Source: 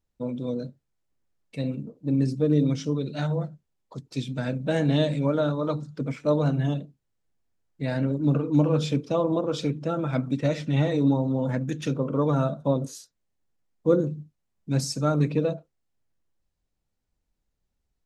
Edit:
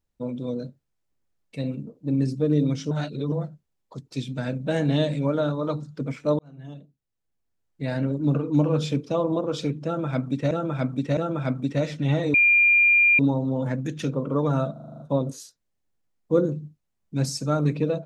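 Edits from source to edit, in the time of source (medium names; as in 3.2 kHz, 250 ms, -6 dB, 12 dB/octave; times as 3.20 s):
2.91–3.32 s: reverse
6.39–7.88 s: fade in
9.85–10.51 s: loop, 3 plays
11.02 s: add tone 2.4 kHz -14 dBFS 0.85 s
12.55 s: stutter 0.04 s, 8 plays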